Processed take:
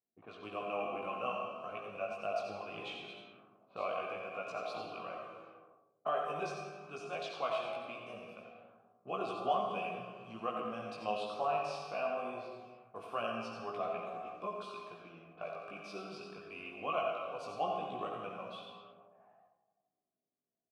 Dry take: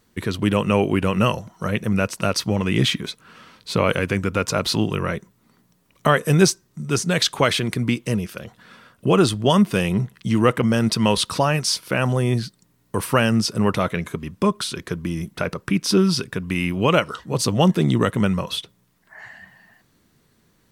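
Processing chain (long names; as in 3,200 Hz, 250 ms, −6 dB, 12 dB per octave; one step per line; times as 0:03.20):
comb and all-pass reverb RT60 1.9 s, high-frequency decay 0.65×, pre-delay 30 ms, DRR 2 dB
in parallel at −5.5 dB: bit-depth reduction 6 bits, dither none
on the sum: formant filter a
tuned comb filter 82 Hz, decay 1 s, harmonics all, mix 60%
on a send: single-tap delay 88 ms −8 dB
on the sum: multi-voice chorus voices 2, 0.21 Hz, delay 18 ms, depth 1.9 ms
low-pass that shuts in the quiet parts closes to 340 Hz, open at −44.5 dBFS
level −1.5 dB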